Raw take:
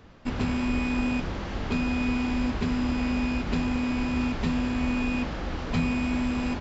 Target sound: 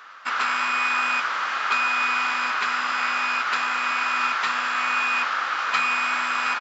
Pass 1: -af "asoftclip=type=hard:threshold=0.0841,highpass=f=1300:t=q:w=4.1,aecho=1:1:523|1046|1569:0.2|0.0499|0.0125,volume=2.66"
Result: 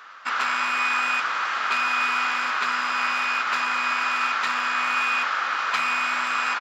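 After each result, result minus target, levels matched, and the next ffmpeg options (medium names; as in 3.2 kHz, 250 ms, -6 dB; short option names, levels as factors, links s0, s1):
hard clipper: distortion +35 dB; echo 192 ms early
-af "asoftclip=type=hard:threshold=0.211,highpass=f=1300:t=q:w=4.1,aecho=1:1:523|1046|1569:0.2|0.0499|0.0125,volume=2.66"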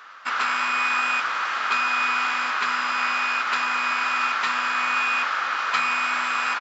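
echo 192 ms early
-af "asoftclip=type=hard:threshold=0.211,highpass=f=1300:t=q:w=4.1,aecho=1:1:715|1430|2145:0.2|0.0499|0.0125,volume=2.66"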